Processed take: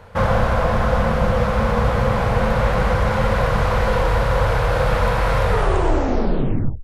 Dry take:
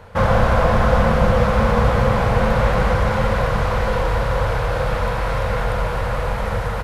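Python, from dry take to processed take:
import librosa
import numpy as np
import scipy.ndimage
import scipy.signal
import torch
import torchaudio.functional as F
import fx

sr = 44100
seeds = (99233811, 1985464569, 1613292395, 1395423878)

y = fx.tape_stop_end(x, sr, length_s=1.41)
y = fx.rider(y, sr, range_db=4, speed_s=0.5)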